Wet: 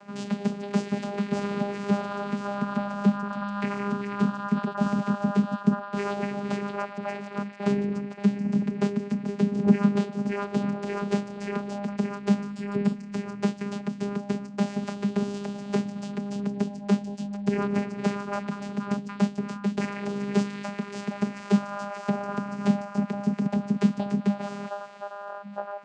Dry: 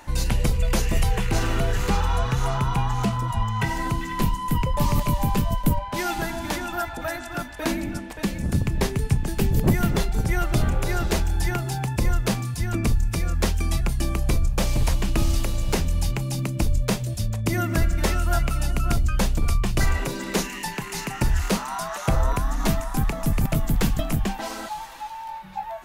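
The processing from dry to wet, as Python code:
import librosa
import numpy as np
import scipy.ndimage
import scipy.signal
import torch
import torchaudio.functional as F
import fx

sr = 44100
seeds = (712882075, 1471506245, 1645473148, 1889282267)

y = fx.vocoder(x, sr, bands=8, carrier='saw', carrier_hz=202.0)
y = fx.notch(y, sr, hz=6100.0, q=6.1, at=(12.5, 12.95))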